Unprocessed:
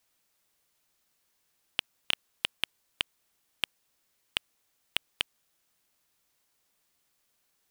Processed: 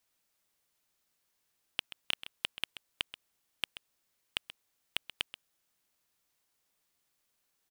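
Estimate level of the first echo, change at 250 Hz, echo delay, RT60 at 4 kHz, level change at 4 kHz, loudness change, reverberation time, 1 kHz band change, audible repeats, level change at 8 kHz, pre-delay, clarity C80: -13.5 dB, -4.5 dB, 0.131 s, none, -4.5 dB, -4.5 dB, none, -4.5 dB, 1, -4.5 dB, none, none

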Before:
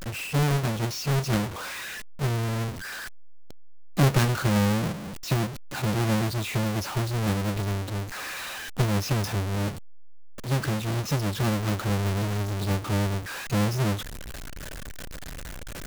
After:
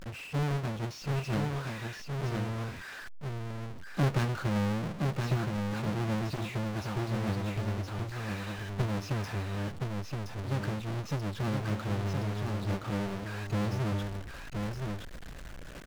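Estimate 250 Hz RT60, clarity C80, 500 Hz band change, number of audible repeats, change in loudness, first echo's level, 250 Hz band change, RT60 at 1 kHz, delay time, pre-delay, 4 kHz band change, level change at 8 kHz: none, none, -5.5 dB, 1, -6.5 dB, -4.0 dB, -5.5 dB, none, 1.02 s, none, -9.5 dB, -13.0 dB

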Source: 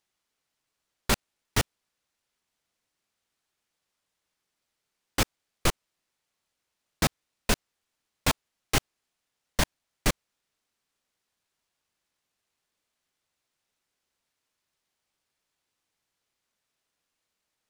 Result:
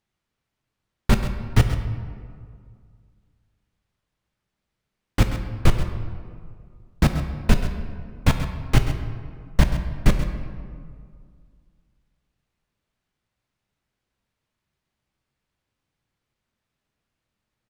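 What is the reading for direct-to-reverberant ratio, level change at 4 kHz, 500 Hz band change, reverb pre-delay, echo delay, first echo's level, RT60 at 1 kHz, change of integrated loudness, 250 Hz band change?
5.5 dB, -2.5 dB, +3.5 dB, 7 ms, 0.132 s, -12.0 dB, 2.0 s, +5.5 dB, +9.0 dB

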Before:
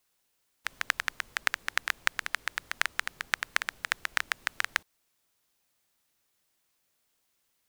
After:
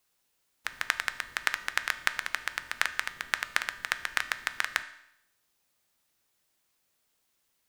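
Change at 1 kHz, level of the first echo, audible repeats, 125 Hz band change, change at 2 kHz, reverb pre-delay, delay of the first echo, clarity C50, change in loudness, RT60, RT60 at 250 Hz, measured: +0.5 dB, none, none, n/a, +0.5 dB, 3 ms, none, 14.0 dB, +0.5 dB, 0.75 s, 0.75 s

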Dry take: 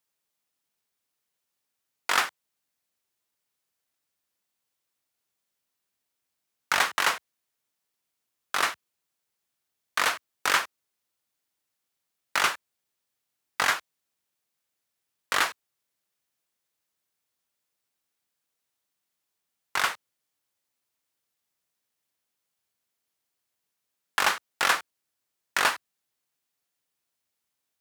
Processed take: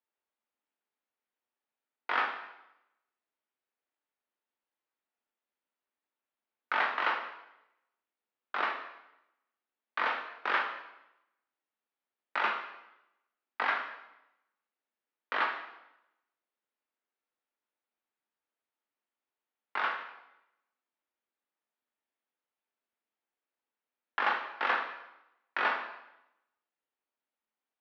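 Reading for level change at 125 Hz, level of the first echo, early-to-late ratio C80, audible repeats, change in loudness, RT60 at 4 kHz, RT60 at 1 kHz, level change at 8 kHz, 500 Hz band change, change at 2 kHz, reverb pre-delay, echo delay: under -15 dB, none, 9.0 dB, none, -6.5 dB, 0.80 s, 0.90 s, under -35 dB, -3.5 dB, -5.0 dB, 5 ms, none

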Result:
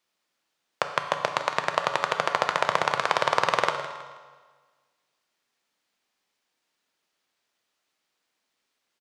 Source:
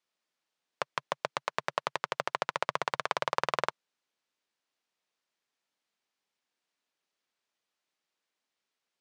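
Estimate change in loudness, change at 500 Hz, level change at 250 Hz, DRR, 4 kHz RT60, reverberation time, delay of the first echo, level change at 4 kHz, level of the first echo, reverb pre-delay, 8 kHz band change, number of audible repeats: +8.0 dB, +8.0 dB, +8.5 dB, 5.0 dB, 1.3 s, 1.5 s, 0.16 s, +8.0 dB, -13.0 dB, 7 ms, +8.0 dB, 3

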